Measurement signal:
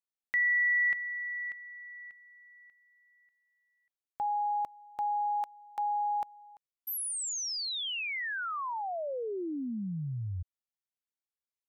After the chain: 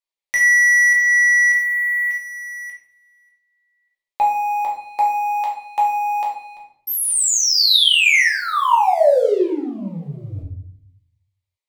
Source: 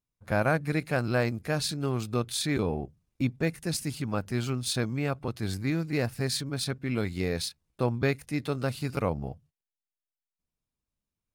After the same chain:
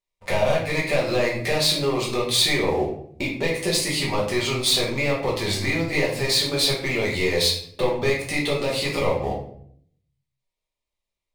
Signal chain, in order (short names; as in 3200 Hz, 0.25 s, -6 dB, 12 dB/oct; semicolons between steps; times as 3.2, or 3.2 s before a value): compressor 16:1, threshold -34 dBFS; graphic EQ 125/250/500/1000/2000/4000/8000 Hz -7/-6/+10/+6/+12/+8/+5 dB; sample leveller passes 3; bell 1500 Hz -14.5 dB 0.38 oct; shoebox room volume 99 m³, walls mixed, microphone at 1.2 m; gain -2.5 dB